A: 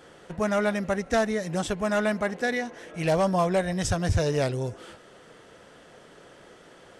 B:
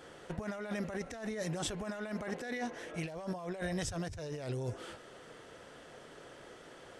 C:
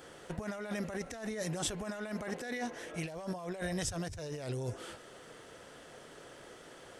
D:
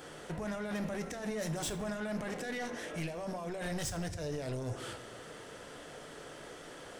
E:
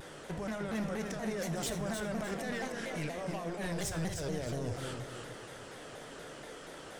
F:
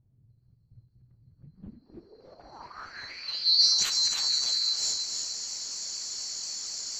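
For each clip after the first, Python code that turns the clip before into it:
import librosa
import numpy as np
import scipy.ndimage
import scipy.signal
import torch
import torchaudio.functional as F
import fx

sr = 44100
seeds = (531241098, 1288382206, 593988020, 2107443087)

y1 = fx.peak_eq(x, sr, hz=190.0, db=-6.5, octaves=0.2)
y1 = fx.over_compress(y1, sr, threshold_db=-32.0, ratio=-1.0)
y1 = F.gain(torch.from_numpy(y1), -7.0).numpy()
y2 = fx.high_shelf(y1, sr, hz=7200.0, db=8.0)
y3 = 10.0 ** (-37.0 / 20.0) * np.tanh(y2 / 10.0 ** (-37.0 / 20.0))
y3 = fx.room_shoebox(y3, sr, seeds[0], volume_m3=220.0, walls='mixed', distance_m=0.4)
y3 = F.gain(torch.from_numpy(y3), 3.5).numpy()
y4 = fx.echo_feedback(y3, sr, ms=307, feedback_pct=40, wet_db=-6)
y4 = fx.vibrato_shape(y4, sr, shape='saw_down', rate_hz=4.2, depth_cents=160.0)
y5 = fx.band_swap(y4, sr, width_hz=4000)
y5 = fx.filter_sweep_lowpass(y5, sr, from_hz=120.0, to_hz=6800.0, start_s=1.34, end_s=3.85, q=6.2)
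y5 = F.gain(torch.from_numpy(y5), 4.5).numpy()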